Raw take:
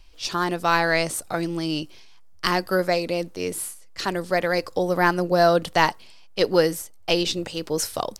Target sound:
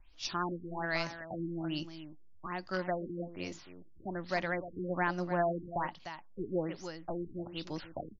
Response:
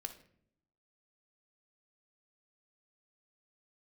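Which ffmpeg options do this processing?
-filter_complex "[0:a]equalizer=f=460:t=o:w=0.31:g=-14,alimiter=limit=-10.5dB:level=0:latency=1:release=470,asplit=2[a][b];[b]aecho=0:1:300:0.282[c];[a][c]amix=inputs=2:normalize=0,afftfilt=real='re*lt(b*sr/1024,450*pow(7400/450,0.5+0.5*sin(2*PI*1.2*pts/sr)))':imag='im*lt(b*sr/1024,450*pow(7400/450,0.5+0.5*sin(2*PI*1.2*pts/sr)))':win_size=1024:overlap=0.75,volume=-9dB"

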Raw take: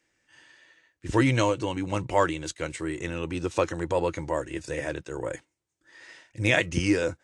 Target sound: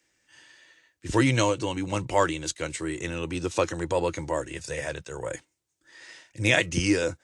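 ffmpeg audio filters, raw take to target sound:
-filter_complex "[0:a]asettb=1/sr,asplit=3[a][b][c];[a]atrim=end=4.534[d];[b]atrim=start=4.53:end=5.31,asetpts=PTS-STARTPTS,afade=t=in:d=0.004:c=qsin,afade=t=out:st=0.776:d=0.004:c=qsin,equalizer=f=310:t=o:w=0.42:g=-11[e];[c]atrim=start=5.306[f];[d][e]acrossfade=d=0.004:c1=hsin:c2=qsin[g];[g][f]acrossfade=d=0.004:c1=qsin:c2=hsin,acrossover=split=110|3300[h][i][j];[j]acontrast=39[k];[h][i][k]amix=inputs=3:normalize=0"

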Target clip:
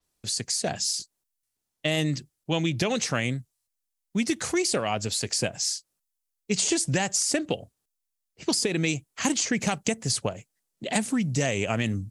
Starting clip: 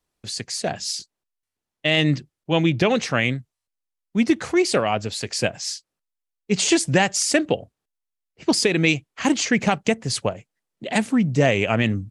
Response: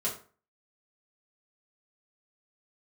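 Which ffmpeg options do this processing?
-filter_complex "[0:a]bass=f=250:g=2,treble=f=4k:g=9,acrossover=split=1500|6800[a][b][c];[a]acompressor=threshold=-21dB:ratio=4[d];[b]acompressor=threshold=-28dB:ratio=4[e];[c]acompressor=threshold=-35dB:ratio=4[f];[d][e][f]amix=inputs=3:normalize=0,adynamicequalizer=threshold=0.0126:dfrequency=6900:dqfactor=0.7:tfrequency=6900:tqfactor=0.7:attack=5:release=100:ratio=0.375:range=3:mode=boostabove:tftype=highshelf,volume=-2.5dB"

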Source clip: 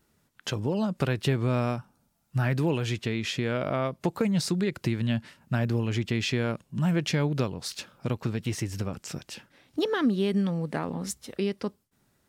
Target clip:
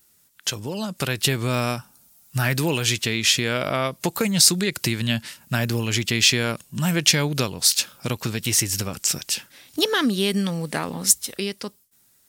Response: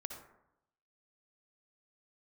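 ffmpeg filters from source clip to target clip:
-af "dynaudnorm=f=130:g=17:m=6dB,crystalizer=i=7.5:c=0,volume=-4dB"

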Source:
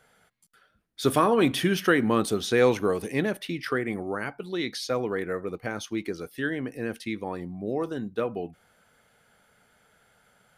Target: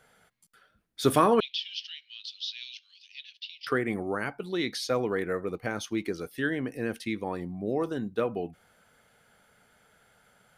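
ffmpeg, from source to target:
-filter_complex "[0:a]asettb=1/sr,asplit=3[a][b][c];[a]atrim=end=1.404[d];[b]atrim=start=1.4:end=3.67,asetpts=PTS-STARTPTS,afade=t=in:d=0.004:c=qsin,afade=t=out:st=2.266:d=0.004:c=qsin,asuperpass=centerf=3800:order=8:qfactor=1.5[e];[c]atrim=start=3.666[f];[d][e]acrossfade=d=0.004:c1=hsin:c2=qsin[g];[g][f]acrossfade=d=0.004:c1=qsin:c2=hsin"

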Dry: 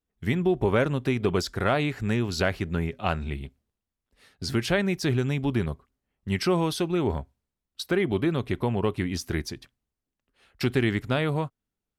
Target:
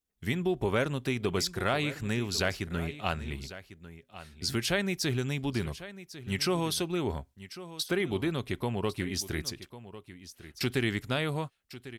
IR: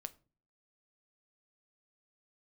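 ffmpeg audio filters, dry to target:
-filter_complex "[0:a]highshelf=f=2.9k:g=10.5,asplit=2[a][b];[b]aecho=0:1:1099:0.178[c];[a][c]amix=inputs=2:normalize=0,volume=-6dB"

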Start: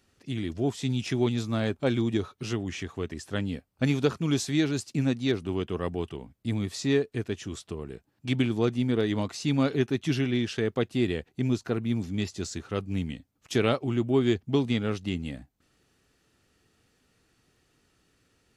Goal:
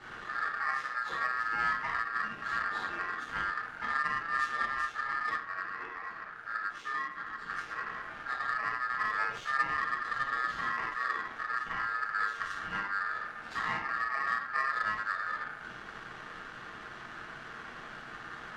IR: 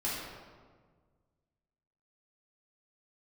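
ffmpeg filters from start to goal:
-filter_complex "[0:a]aeval=exprs='val(0)+0.5*0.0188*sgn(val(0))':c=same,acompressor=threshold=-30dB:ratio=2.5[a];[1:a]atrim=start_sample=2205,atrim=end_sample=6174[b];[a][b]afir=irnorm=-1:irlink=0,aeval=exprs='val(0)*sin(2*PI*1500*n/s)':c=same,asplit=3[c][d][e];[c]afade=t=out:st=5.36:d=0.02[f];[d]flanger=delay=3.7:depth=8.1:regen=-65:speed=1.5:shape=sinusoidal,afade=t=in:st=5.36:d=0.02,afade=t=out:st=7.49:d=0.02[g];[e]afade=t=in:st=7.49:d=0.02[h];[f][g][h]amix=inputs=3:normalize=0,adynamicsmooth=sensitivity=1.5:basefreq=2.2k,volume=-3.5dB"

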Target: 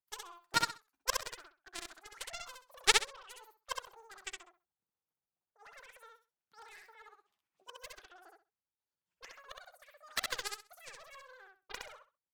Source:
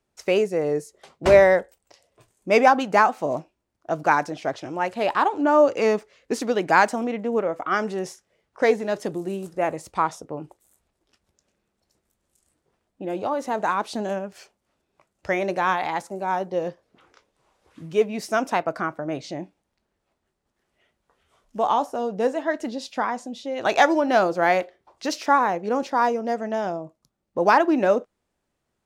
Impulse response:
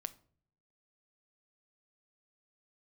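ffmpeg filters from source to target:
-filter_complex "[0:a]tremolo=f=3.1:d=0.86,aeval=exprs='0.75*(cos(1*acos(clip(val(0)/0.75,-1,1)))-cos(1*PI/2))+0.266*(cos(3*acos(clip(val(0)/0.75,-1,1)))-cos(3*PI/2))':c=same,asplit=2[a][b];[b]aecho=0:1:152|304|456:0.708|0.149|0.0312[c];[a][c]amix=inputs=2:normalize=0,asetrate=103194,aresample=44100,volume=-1dB"

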